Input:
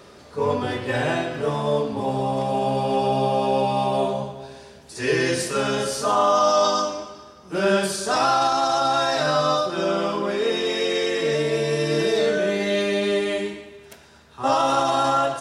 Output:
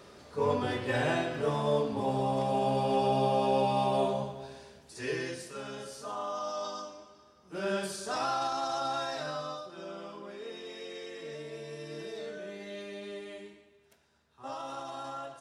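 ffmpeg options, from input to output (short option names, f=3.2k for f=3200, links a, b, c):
-af "afade=t=out:st=4.48:d=0.91:silence=0.251189,afade=t=in:st=6.97:d=0.82:silence=0.501187,afade=t=out:st=8.9:d=0.7:silence=0.398107"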